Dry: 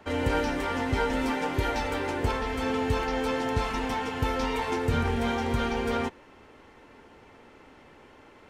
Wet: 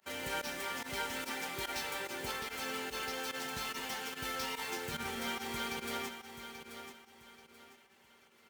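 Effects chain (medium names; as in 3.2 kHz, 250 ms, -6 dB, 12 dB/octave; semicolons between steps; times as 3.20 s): median filter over 5 samples; high-pass 87 Hz 12 dB/octave; pre-emphasis filter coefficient 0.9; comb 5.2 ms, depth 54%; in parallel at -5 dB: bit crusher 8-bit; on the sum: volume shaper 145 bpm, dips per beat 1, -21 dB, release 62 ms; feedback delay 834 ms, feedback 32%, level -9.5 dB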